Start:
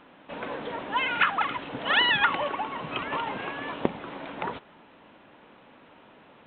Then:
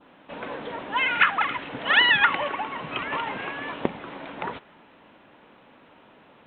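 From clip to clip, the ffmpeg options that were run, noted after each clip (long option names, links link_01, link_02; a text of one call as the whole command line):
ffmpeg -i in.wav -af "adynamicequalizer=threshold=0.0126:dfrequency=2000:dqfactor=1.4:tfrequency=2000:tqfactor=1.4:attack=5:release=100:ratio=0.375:range=3:mode=boostabove:tftype=bell" out.wav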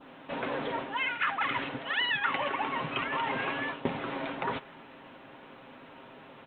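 ffmpeg -i in.wav -af "aecho=1:1:7.5:0.43,areverse,acompressor=threshold=-31dB:ratio=5,areverse,volume=2.5dB" out.wav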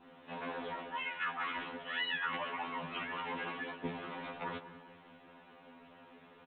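ffmpeg -i in.wav -filter_complex "[0:a]asplit=2[link_01][link_02];[link_02]adelay=197,lowpass=frequency=1200:poles=1,volume=-12dB,asplit=2[link_03][link_04];[link_04]adelay=197,lowpass=frequency=1200:poles=1,volume=0.53,asplit=2[link_05][link_06];[link_06]adelay=197,lowpass=frequency=1200:poles=1,volume=0.53,asplit=2[link_07][link_08];[link_08]adelay=197,lowpass=frequency=1200:poles=1,volume=0.53,asplit=2[link_09][link_10];[link_10]adelay=197,lowpass=frequency=1200:poles=1,volume=0.53,asplit=2[link_11][link_12];[link_12]adelay=197,lowpass=frequency=1200:poles=1,volume=0.53[link_13];[link_01][link_03][link_05][link_07][link_09][link_11][link_13]amix=inputs=7:normalize=0,afftfilt=real='re*2*eq(mod(b,4),0)':imag='im*2*eq(mod(b,4),0)':win_size=2048:overlap=0.75,volume=-5.5dB" out.wav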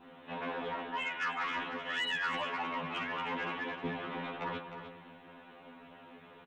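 ffmpeg -i in.wav -filter_complex "[0:a]asoftclip=type=tanh:threshold=-30dB,asplit=2[link_01][link_02];[link_02]aecho=0:1:307:0.335[link_03];[link_01][link_03]amix=inputs=2:normalize=0,volume=3.5dB" out.wav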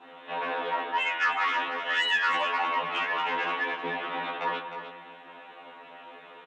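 ffmpeg -i in.wav -filter_complex "[0:a]highpass=420,lowpass=7100,asplit=2[link_01][link_02];[link_02]adelay=18,volume=-3.5dB[link_03];[link_01][link_03]amix=inputs=2:normalize=0,volume=7dB" out.wav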